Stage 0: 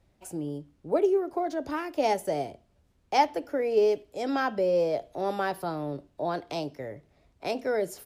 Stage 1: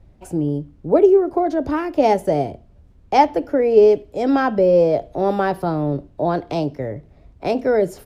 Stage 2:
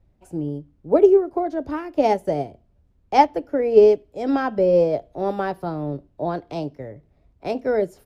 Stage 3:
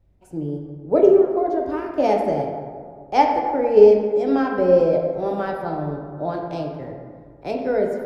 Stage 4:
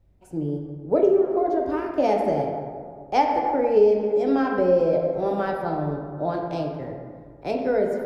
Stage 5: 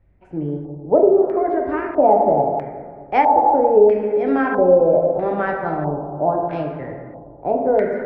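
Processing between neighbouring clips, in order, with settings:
tilt -2.5 dB/oct; gain +8 dB
upward expander 1.5:1, over -30 dBFS
reverb RT60 1.9 s, pre-delay 13 ms, DRR 1 dB; gain -2 dB
compressor 2:1, threshold -18 dBFS, peak gain reduction 7 dB
LFO low-pass square 0.77 Hz 840–2000 Hz; gain +2.5 dB

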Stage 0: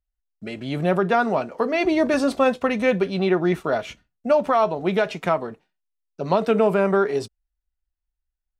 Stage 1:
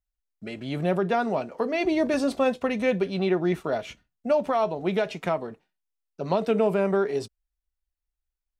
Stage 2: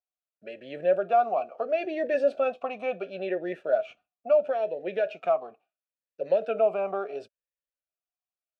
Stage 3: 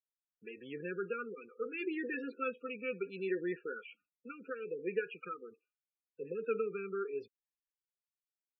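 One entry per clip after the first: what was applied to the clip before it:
dynamic EQ 1300 Hz, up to -5 dB, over -33 dBFS, Q 1.5; gain -3.5 dB
vowel sweep a-e 0.73 Hz; gain +7 dB
loudest bins only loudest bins 32; brick-wall FIR band-stop 510–1200 Hz; gain -3 dB

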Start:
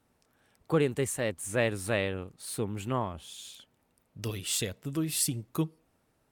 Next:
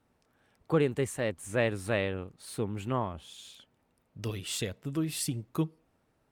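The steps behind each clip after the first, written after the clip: high shelf 5300 Hz -8.5 dB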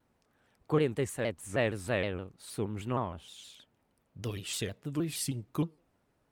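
shaped vibrato saw down 6.4 Hz, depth 160 cents; gain -1.5 dB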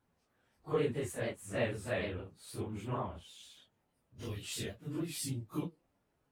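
phase scrambler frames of 0.1 s; gain -4.5 dB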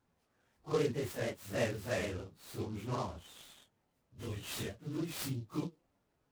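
noise-modulated delay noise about 3900 Hz, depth 0.032 ms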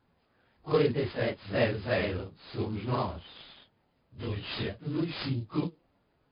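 brick-wall FIR low-pass 5100 Hz; gain +7 dB

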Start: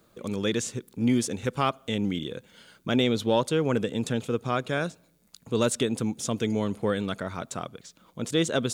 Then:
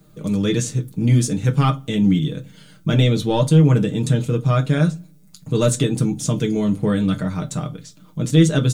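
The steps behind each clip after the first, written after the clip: tone controls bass +14 dB, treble +4 dB; comb 6.6 ms, depth 57%; reverb RT60 0.25 s, pre-delay 5 ms, DRR 5 dB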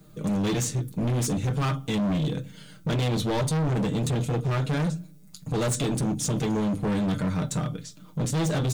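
in parallel at -2.5 dB: limiter -14.5 dBFS, peak gain reduction 12 dB; on the sum: overloaded stage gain 17.5 dB; gain -5.5 dB

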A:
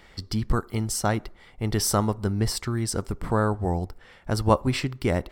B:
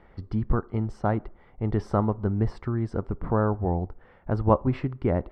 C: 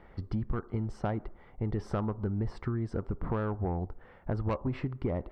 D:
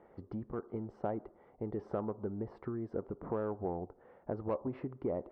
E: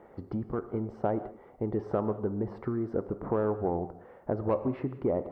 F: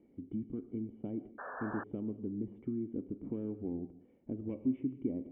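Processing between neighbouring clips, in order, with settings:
LPF 1200 Hz 12 dB/oct
soft clip -16.5 dBFS, distortion -14 dB; compressor, threshold -28 dBFS, peak gain reduction 8.5 dB
band-pass 490 Hz, Q 1
non-linear reverb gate 0.22 s flat, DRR 11.5 dB; gain +7 dB
vocal tract filter i; painted sound noise, 1.38–1.84, 400–1800 Hz -45 dBFS; gain +1.5 dB

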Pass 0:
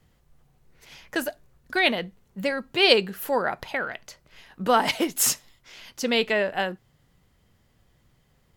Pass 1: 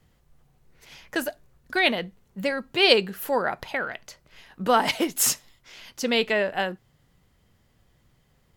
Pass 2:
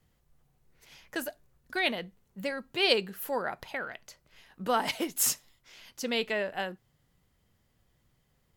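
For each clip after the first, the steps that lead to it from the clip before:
nothing audible
high shelf 7800 Hz +5 dB; gain -7.5 dB

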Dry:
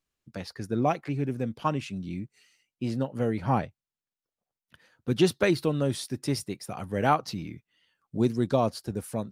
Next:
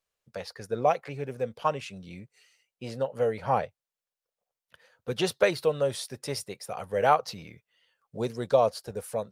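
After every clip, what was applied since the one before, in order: resonant low shelf 390 Hz -7 dB, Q 3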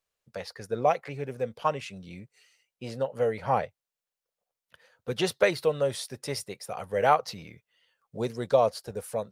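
dynamic EQ 2000 Hz, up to +4 dB, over -54 dBFS, Q 6.7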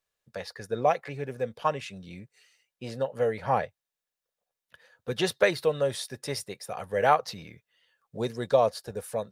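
small resonant body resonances 1700/3700 Hz, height 9 dB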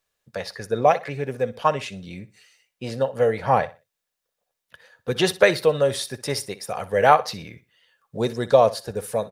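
feedback echo 61 ms, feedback 27%, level -17 dB; gain +6.5 dB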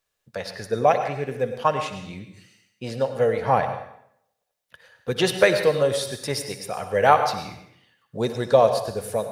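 reverb RT60 0.70 s, pre-delay 88 ms, DRR 8.5 dB; gain -1 dB

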